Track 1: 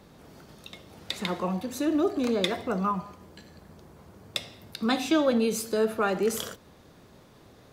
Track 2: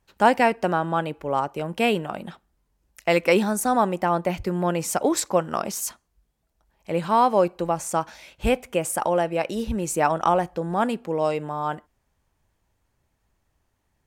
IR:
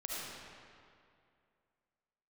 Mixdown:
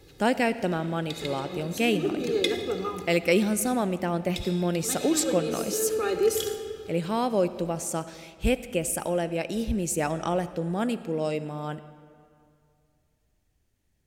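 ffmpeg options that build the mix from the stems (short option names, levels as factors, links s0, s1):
-filter_complex "[0:a]aecho=1:1:2.4:0.93,volume=0.841,asplit=2[s0][s1];[s1]volume=0.447[s2];[1:a]volume=0.891,asplit=3[s3][s4][s5];[s4]volume=0.2[s6];[s5]apad=whole_len=340684[s7];[s0][s7]sidechaincompress=threshold=0.0112:ratio=8:attack=16:release=113[s8];[2:a]atrim=start_sample=2205[s9];[s2][s6]amix=inputs=2:normalize=0[s10];[s10][s9]afir=irnorm=-1:irlink=0[s11];[s8][s3][s11]amix=inputs=3:normalize=0,equalizer=f=1000:t=o:w=1.3:g=-13"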